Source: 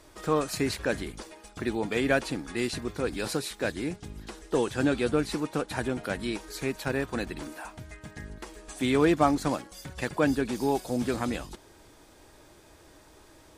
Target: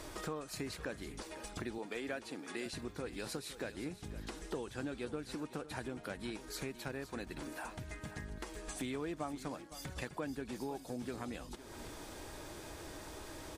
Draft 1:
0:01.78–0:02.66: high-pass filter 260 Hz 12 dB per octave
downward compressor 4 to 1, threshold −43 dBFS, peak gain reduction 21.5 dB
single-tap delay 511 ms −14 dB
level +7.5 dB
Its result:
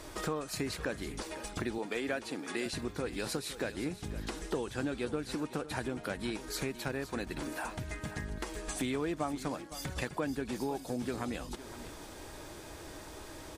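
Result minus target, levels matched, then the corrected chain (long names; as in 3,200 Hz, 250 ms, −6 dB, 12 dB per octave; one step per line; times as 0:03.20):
downward compressor: peak gain reduction −6 dB
0:01.78–0:02.66: high-pass filter 260 Hz 12 dB per octave
downward compressor 4 to 1, threshold −51 dBFS, peak gain reduction 27.5 dB
single-tap delay 511 ms −14 dB
level +7.5 dB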